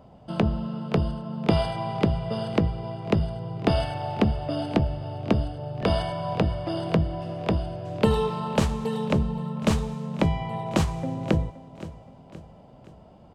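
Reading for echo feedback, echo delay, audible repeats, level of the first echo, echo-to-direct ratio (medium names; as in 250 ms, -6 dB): 49%, 521 ms, 3, -16.5 dB, -15.5 dB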